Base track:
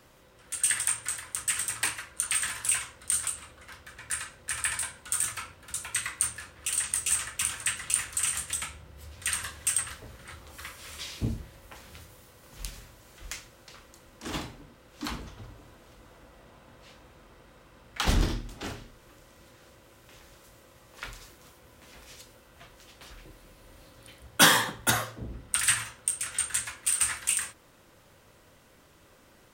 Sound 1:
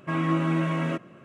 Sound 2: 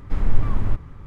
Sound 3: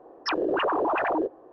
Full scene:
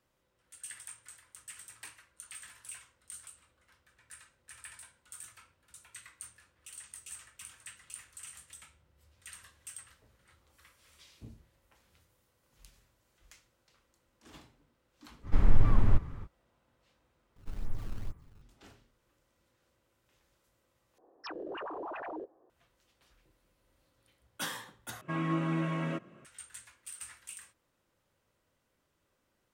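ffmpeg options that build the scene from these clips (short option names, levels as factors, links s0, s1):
-filter_complex "[2:a]asplit=2[s0][s1];[0:a]volume=0.106[s2];[s0]alimiter=limit=0.398:level=0:latency=1:release=22[s3];[s1]acrusher=samples=19:mix=1:aa=0.000001:lfo=1:lforange=30.4:lforate=2.2[s4];[s2]asplit=4[s5][s6][s7][s8];[s5]atrim=end=17.364[s9];[s4]atrim=end=1.06,asetpts=PTS-STARTPTS,volume=0.133[s10];[s6]atrim=start=18.416:end=20.984[s11];[3:a]atrim=end=1.52,asetpts=PTS-STARTPTS,volume=0.168[s12];[s7]atrim=start=22.496:end=25.014[s13];[1:a]atrim=end=1.24,asetpts=PTS-STARTPTS,volume=0.447[s14];[s8]atrim=start=26.246[s15];[s3]atrim=end=1.06,asetpts=PTS-STARTPTS,volume=0.794,afade=t=in:d=0.05,afade=t=out:st=1.01:d=0.05,adelay=15220[s16];[s9][s10]acrossfade=d=0.004:c1=hsin:c2=hsin[s17];[s17][s11]acrossfade=d=0.004:c1=hsin:c2=hsin[s18];[s18][s12]acrossfade=d=0.004:c1=hsin:c2=hsin[s19];[s19][s13]acrossfade=d=0.004:c1=hsin:c2=hsin[s20];[s20][s14]acrossfade=d=0.004:c1=hsin:c2=hsin[s21];[s21][s15]acrossfade=d=0.004:c1=hsin:c2=hsin[s22];[s22][s16]amix=inputs=2:normalize=0"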